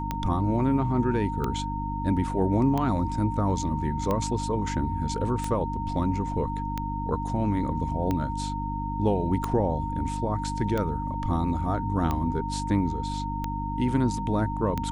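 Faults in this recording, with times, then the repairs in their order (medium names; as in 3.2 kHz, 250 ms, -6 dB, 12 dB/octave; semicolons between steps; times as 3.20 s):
hum 50 Hz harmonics 6 -32 dBFS
tick 45 rpm -15 dBFS
whine 920 Hz -32 dBFS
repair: de-click; de-hum 50 Hz, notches 6; band-stop 920 Hz, Q 30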